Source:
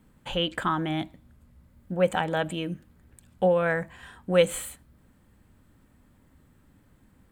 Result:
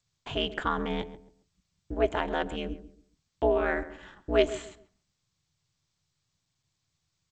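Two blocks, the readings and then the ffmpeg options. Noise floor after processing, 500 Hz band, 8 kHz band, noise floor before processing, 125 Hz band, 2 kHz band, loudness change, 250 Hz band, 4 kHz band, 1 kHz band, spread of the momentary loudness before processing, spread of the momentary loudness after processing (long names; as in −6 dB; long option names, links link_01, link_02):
−80 dBFS, −3.0 dB, −12.0 dB, −61 dBFS, −8.0 dB, −3.0 dB, −3.0 dB, −3.5 dB, −3.5 dB, −2.5 dB, 17 LU, 17 LU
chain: -filter_complex "[0:a]agate=range=-13dB:threshold=-51dB:ratio=16:detection=peak,anlmdn=0.00251,aeval=exprs='val(0)*sin(2*PI*120*n/s)':channel_layout=same,asplit=2[link_01][link_02];[link_02]adelay=136,lowpass=frequency=1100:poles=1,volume=-13dB,asplit=2[link_03][link_04];[link_04]adelay=136,lowpass=frequency=1100:poles=1,volume=0.28,asplit=2[link_05][link_06];[link_06]adelay=136,lowpass=frequency=1100:poles=1,volume=0.28[link_07];[link_01][link_03][link_05][link_07]amix=inputs=4:normalize=0" -ar 16000 -c:a g722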